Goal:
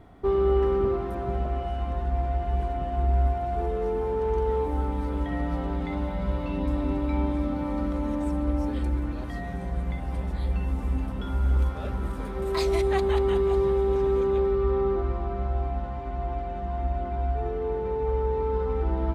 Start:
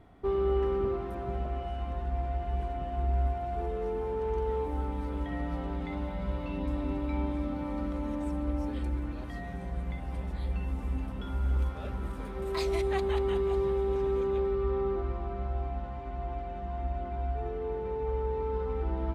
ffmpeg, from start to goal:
ffmpeg -i in.wav -af "equalizer=frequency=2600:width_type=o:width=0.77:gain=-2.5,volume=5.5dB" out.wav

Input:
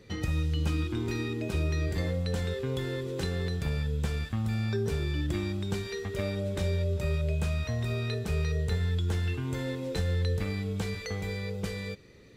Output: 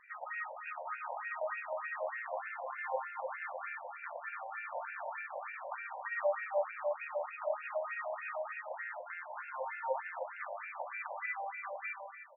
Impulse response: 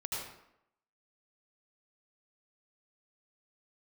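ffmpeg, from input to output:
-filter_complex "[0:a]highshelf=frequency=3400:gain=-11,bandreject=frequency=500:width=12,aresample=11025,asoftclip=type=tanh:threshold=-27.5dB,aresample=44100,aemphasis=mode=reproduction:type=75kf,asplit=2[link_01][link_02];[1:a]atrim=start_sample=2205,adelay=117[link_03];[link_02][link_03]afir=irnorm=-1:irlink=0,volume=-2.5dB[link_04];[link_01][link_04]amix=inputs=2:normalize=0,afftfilt=real='re*between(b*sr/1024,720*pow(2000/720,0.5+0.5*sin(2*PI*3.3*pts/sr))/1.41,720*pow(2000/720,0.5+0.5*sin(2*PI*3.3*pts/sr))*1.41)':imag='im*between(b*sr/1024,720*pow(2000/720,0.5+0.5*sin(2*PI*3.3*pts/sr))/1.41,720*pow(2000/720,0.5+0.5*sin(2*PI*3.3*pts/sr))*1.41)':win_size=1024:overlap=0.75,volume=10dB"

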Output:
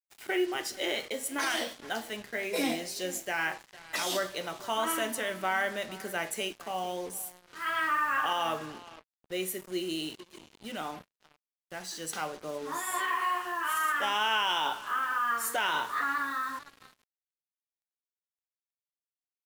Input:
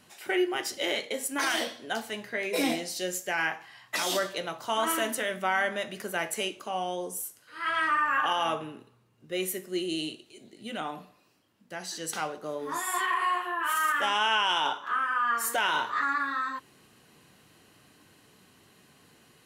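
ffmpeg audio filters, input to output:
ffmpeg -i in.wav -filter_complex "[0:a]asplit=2[link_01][link_02];[link_02]adelay=454.8,volume=-18dB,highshelf=frequency=4000:gain=-10.2[link_03];[link_01][link_03]amix=inputs=2:normalize=0,acrusher=bits=6:mix=0:aa=0.5,volume=-2.5dB" out.wav

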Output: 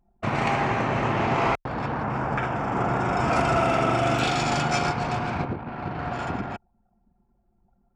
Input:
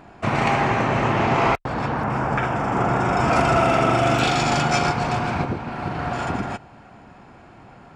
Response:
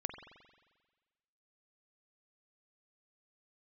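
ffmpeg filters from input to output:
-af "anlmdn=15.8,volume=-4dB"

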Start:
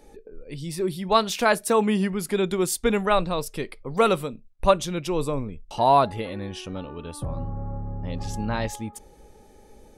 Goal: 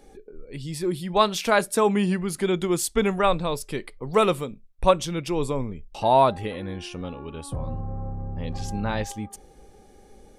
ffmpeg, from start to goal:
ffmpeg -i in.wav -af "asetrate=42336,aresample=44100" out.wav

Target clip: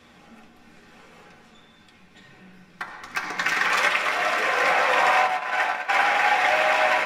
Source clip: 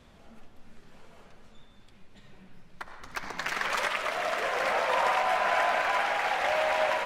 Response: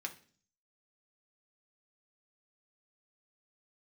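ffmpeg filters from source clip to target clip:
-filter_complex "[0:a]asplit=3[link_01][link_02][link_03];[link_01]afade=type=out:start_time=5.26:duration=0.02[link_04];[link_02]agate=range=-18dB:threshold=-24dB:ratio=16:detection=peak,afade=type=in:start_time=5.26:duration=0.02,afade=type=out:start_time=5.88:duration=0.02[link_05];[link_03]afade=type=in:start_time=5.88:duration=0.02[link_06];[link_04][link_05][link_06]amix=inputs=3:normalize=0[link_07];[1:a]atrim=start_sample=2205[link_08];[link_07][link_08]afir=irnorm=-1:irlink=0,volume=8.5dB"

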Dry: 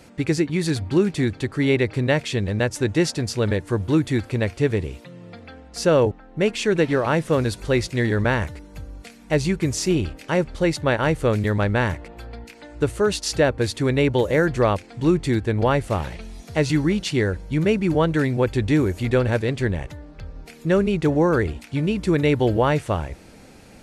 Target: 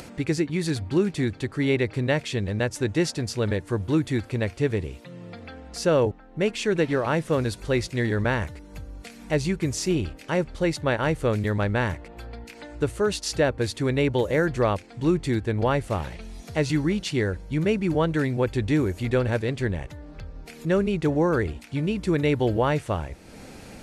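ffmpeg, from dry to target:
ffmpeg -i in.wav -af "acompressor=mode=upward:threshold=-30dB:ratio=2.5,volume=-3.5dB" out.wav

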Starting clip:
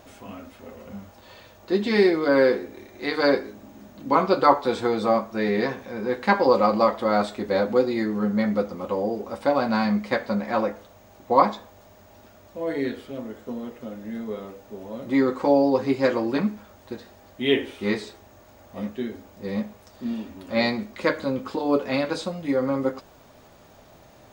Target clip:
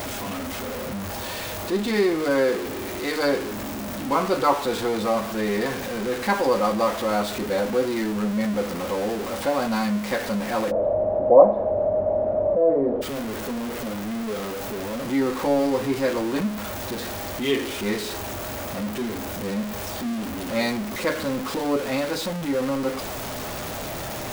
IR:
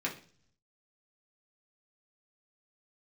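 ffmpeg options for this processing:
-filter_complex "[0:a]aeval=exprs='val(0)+0.5*0.0841*sgn(val(0))':channel_layout=same,asplit=3[link_01][link_02][link_03];[link_01]afade=type=out:start_time=10.7:duration=0.02[link_04];[link_02]lowpass=frequency=600:width_type=q:width=7.2,afade=type=in:start_time=10.7:duration=0.02,afade=type=out:start_time=13.01:duration=0.02[link_05];[link_03]afade=type=in:start_time=13.01:duration=0.02[link_06];[link_04][link_05][link_06]amix=inputs=3:normalize=0,volume=-4.5dB"

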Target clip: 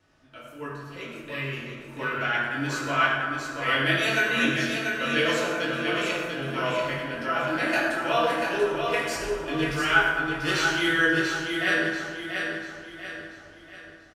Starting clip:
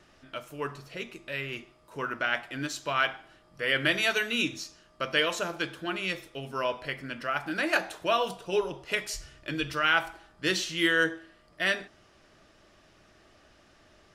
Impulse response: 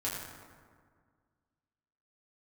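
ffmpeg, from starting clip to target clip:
-filter_complex "[0:a]dynaudnorm=framelen=160:gausssize=11:maxgain=7dB,aecho=1:1:688|1376|2064|2752|3440:0.562|0.231|0.0945|0.0388|0.0159[link_01];[1:a]atrim=start_sample=2205[link_02];[link_01][link_02]afir=irnorm=-1:irlink=0,volume=-8dB"

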